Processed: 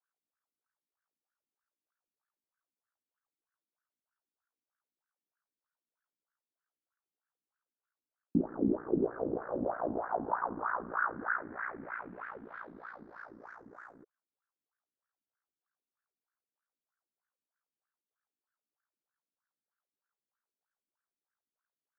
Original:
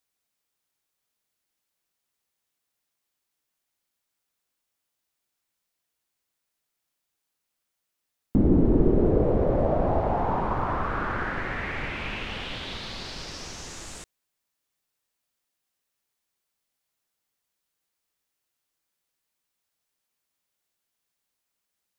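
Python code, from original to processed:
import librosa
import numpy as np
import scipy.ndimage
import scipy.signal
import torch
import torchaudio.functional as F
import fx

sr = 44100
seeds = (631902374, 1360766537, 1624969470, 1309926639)

y = fx.high_shelf_res(x, sr, hz=2100.0, db=-11.0, q=3.0)
y = fx.wah_lfo(y, sr, hz=3.2, low_hz=240.0, high_hz=1600.0, q=4.3)
y = y * np.sin(2.0 * np.pi * 29.0 * np.arange(len(y)) / sr)
y = F.gain(torch.from_numpy(y), 1.5).numpy()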